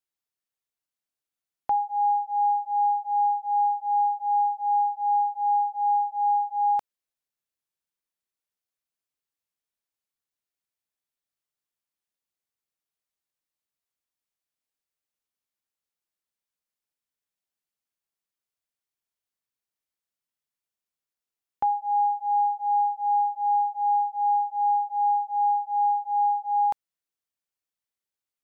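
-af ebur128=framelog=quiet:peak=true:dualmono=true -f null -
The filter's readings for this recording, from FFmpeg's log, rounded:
Integrated loudness:
  I:         -21.5 LUFS
  Threshold: -31.6 LUFS
Loudness range:
  LRA:         6.2 LU
  Threshold: -42.7 LUFS
  LRA low:   -27.4 LUFS
  LRA high:  -21.2 LUFS
True peak:
  Peak:      -18.0 dBFS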